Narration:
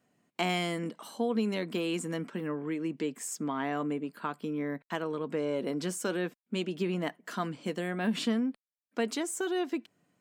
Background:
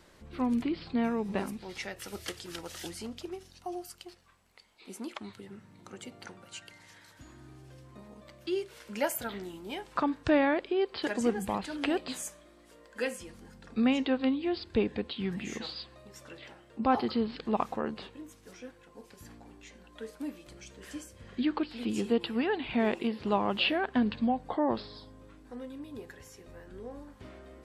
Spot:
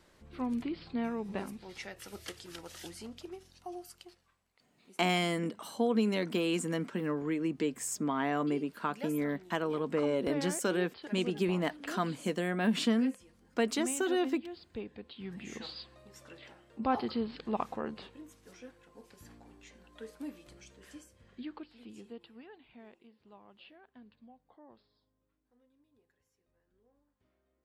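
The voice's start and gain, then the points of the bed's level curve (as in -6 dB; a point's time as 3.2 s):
4.60 s, +1.0 dB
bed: 4.01 s -5 dB
4.58 s -13.5 dB
14.98 s -13.5 dB
15.63 s -4 dB
20.46 s -4 dB
23.07 s -28.5 dB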